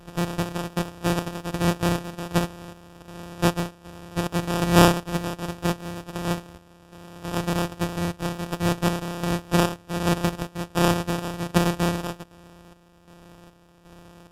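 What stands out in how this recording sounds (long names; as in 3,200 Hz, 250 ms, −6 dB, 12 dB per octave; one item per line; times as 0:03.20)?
a buzz of ramps at a fixed pitch in blocks of 256 samples
chopped level 1.3 Hz, depth 60%, duty 55%
aliases and images of a low sample rate 2,100 Hz, jitter 0%
SBC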